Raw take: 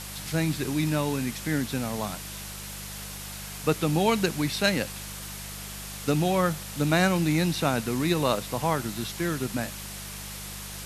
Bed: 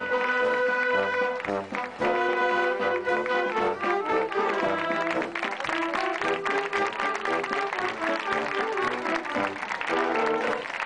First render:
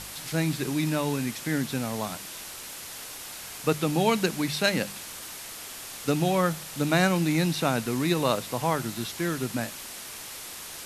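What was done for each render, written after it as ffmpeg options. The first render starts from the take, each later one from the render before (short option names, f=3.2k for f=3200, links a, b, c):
-af "bandreject=f=50:t=h:w=4,bandreject=f=100:t=h:w=4,bandreject=f=150:t=h:w=4,bandreject=f=200:t=h:w=4"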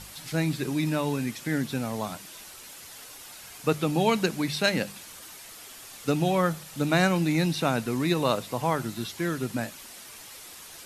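-af "afftdn=nr=7:nf=-41"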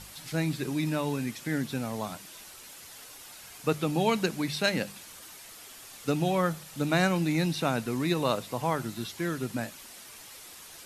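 -af "volume=-2.5dB"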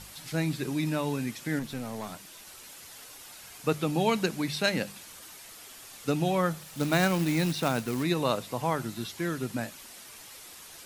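-filter_complex "[0:a]asettb=1/sr,asplit=3[a][b][c];[a]atrim=end=1.594[d];[b]atrim=start=1.59:end=2.47,asetpts=PTS-STARTPTS,afade=t=in:d=0.004:c=qsin,afade=t=out:st=0.876:d=0.004:c=qsin,aeval=exprs='(tanh(28.2*val(0)+0.4)-tanh(0.4))/28.2':c=same[e];[c]atrim=start=2.466[f];[d][e]acrossfade=d=0.004:c1=hsin:c2=qsin[g];[g][f]acrossfade=d=0.004:c1=qsin:c2=hsin,asplit=3[h][i][j];[h]afade=t=out:st=6.59:d=0.02[k];[i]acrusher=bits=3:mode=log:mix=0:aa=0.000001,afade=t=in:st=6.59:d=0.02,afade=t=out:st=8.02:d=0.02[l];[j]afade=t=in:st=8.02:d=0.02[m];[k][l][m]amix=inputs=3:normalize=0"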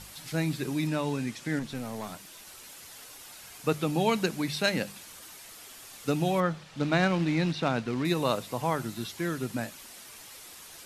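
-filter_complex "[0:a]asettb=1/sr,asplit=3[a][b][c];[a]atrim=end=0.874[d];[b]atrim=start=0.87:end=1.75,asetpts=PTS-STARTPTS,afade=t=in:d=0.004:c=qsin,afade=t=out:st=0.876:d=0.004:c=qsin,lowpass=9.3k[e];[c]atrim=start=1.746[f];[d][e]acrossfade=d=0.004:c1=hsin:c2=qsin[g];[g][f]acrossfade=d=0.004:c1=qsin:c2=hsin,asettb=1/sr,asplit=3[h][i][j];[h]atrim=end=6.404[k];[i]atrim=start=6.4:end=8.05,asetpts=PTS-STARTPTS,afade=t=in:d=0.004:c=qsin,afade=t=out:st=1.646:d=0.004:c=qsin,lowpass=4.3k[l];[j]atrim=start=8.046[m];[k][l]acrossfade=d=0.004:c1=hsin:c2=qsin[n];[n][m]acrossfade=d=0.004:c1=qsin:c2=hsin"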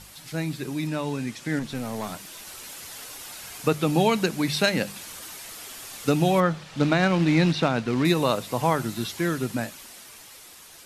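-af "alimiter=limit=-16.5dB:level=0:latency=1:release=398,dynaudnorm=f=270:g=13:m=7.5dB"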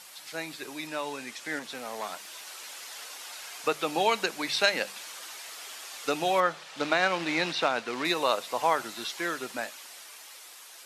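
-filter_complex "[0:a]acrossover=split=7500[a][b];[b]acompressor=threshold=-49dB:ratio=4:attack=1:release=60[c];[a][c]amix=inputs=2:normalize=0,highpass=570"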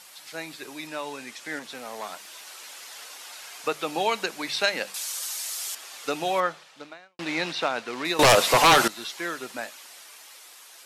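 -filter_complex "[0:a]asettb=1/sr,asplit=3[a][b][c];[a]atrim=end=4.944[d];[b]atrim=start=4.94:end=5.75,asetpts=PTS-STARTPTS,afade=t=in:d=0.004:c=qsin,afade=t=out:st=0.806:d=0.004:c=qsin,bass=f=250:g=-15,treble=f=4k:g=14[e];[c]atrim=start=5.746[f];[d][e]acrossfade=d=0.004:c1=hsin:c2=qsin[g];[g][f]acrossfade=d=0.004:c1=qsin:c2=hsin,asettb=1/sr,asplit=3[h][i][j];[h]atrim=end=8.194[k];[i]atrim=start=8.19:end=8.88,asetpts=PTS-STARTPTS,afade=t=in:d=0.004:c=qsin,afade=t=out:st=0.686:d=0.004:c=qsin,aeval=exprs='0.266*sin(PI/2*4.47*val(0)/0.266)':c=same[l];[j]atrim=start=8.876[m];[k][l]acrossfade=d=0.004:c1=hsin:c2=qsin[n];[n][m]acrossfade=d=0.004:c1=qsin:c2=hsin,asplit=2[o][p];[o]atrim=end=7.19,asetpts=PTS-STARTPTS,afade=t=out:st=6.45:d=0.74:c=qua[q];[p]atrim=start=7.19,asetpts=PTS-STARTPTS,afade=t=in:d=0.004:c=hsin[r];[q][r]concat=n=2:v=0:a=1"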